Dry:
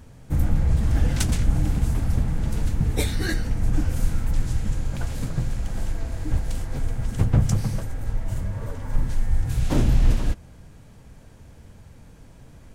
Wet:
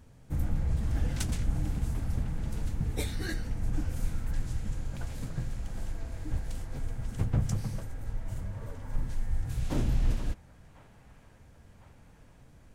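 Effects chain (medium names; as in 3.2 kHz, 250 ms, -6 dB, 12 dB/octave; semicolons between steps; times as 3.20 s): feedback echo behind a band-pass 1052 ms, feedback 70%, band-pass 1.3 kHz, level -16 dB; trim -9 dB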